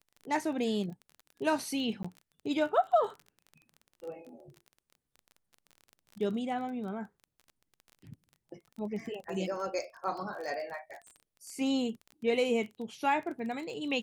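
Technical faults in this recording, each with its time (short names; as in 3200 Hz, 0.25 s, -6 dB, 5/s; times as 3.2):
crackle 27/s -40 dBFS
2.03–2.04 gap 15 ms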